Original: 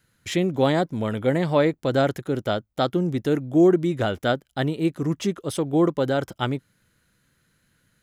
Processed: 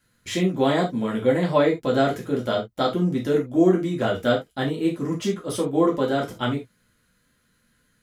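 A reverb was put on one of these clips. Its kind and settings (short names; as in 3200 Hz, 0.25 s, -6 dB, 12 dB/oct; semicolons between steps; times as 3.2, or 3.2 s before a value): non-linear reverb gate 0.1 s falling, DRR -3 dB; gain -4 dB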